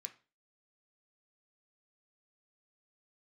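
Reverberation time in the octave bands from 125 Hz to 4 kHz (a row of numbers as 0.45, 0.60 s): 0.40, 0.40, 0.35, 0.30, 0.30, 0.35 s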